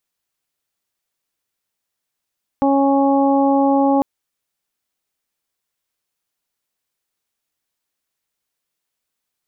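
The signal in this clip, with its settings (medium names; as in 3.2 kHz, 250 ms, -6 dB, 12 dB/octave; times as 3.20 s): steady additive tone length 1.40 s, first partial 276 Hz, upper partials -4/-3/-14 dB, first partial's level -14.5 dB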